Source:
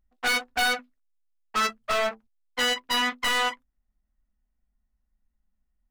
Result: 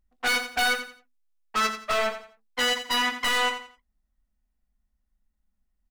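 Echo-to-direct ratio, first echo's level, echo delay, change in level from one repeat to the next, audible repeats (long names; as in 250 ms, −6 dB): −10.0 dB, −10.5 dB, 87 ms, −11.0 dB, 3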